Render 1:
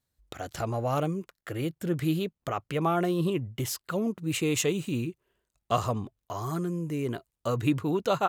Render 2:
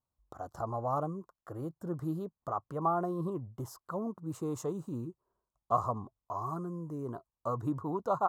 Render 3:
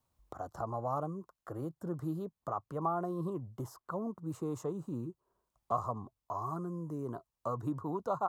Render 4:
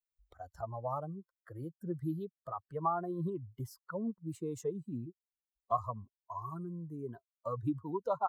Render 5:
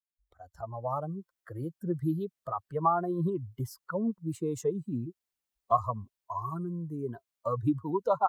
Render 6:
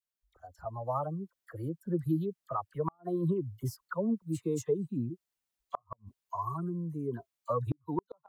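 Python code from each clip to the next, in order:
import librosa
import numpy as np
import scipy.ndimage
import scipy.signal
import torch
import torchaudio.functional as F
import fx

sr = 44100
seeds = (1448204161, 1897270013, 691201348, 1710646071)

y1 = fx.curve_eq(x, sr, hz=(460.0, 1100.0, 2400.0, 5300.0), db=(0, 10, -28, -9))
y1 = y1 * 10.0 ** (-8.0 / 20.0)
y2 = fx.band_squash(y1, sr, depth_pct=40)
y2 = y2 * 10.0 ** (-2.0 / 20.0)
y3 = fx.bin_expand(y2, sr, power=2.0)
y3 = y3 * 10.0 ** (4.0 / 20.0)
y4 = fx.fade_in_head(y3, sr, length_s=1.19)
y4 = y4 * 10.0 ** (6.5 / 20.0)
y5 = fx.dispersion(y4, sr, late='lows', ms=41.0, hz=1500.0)
y5 = fx.gate_flip(y5, sr, shuts_db=-19.0, range_db=-42)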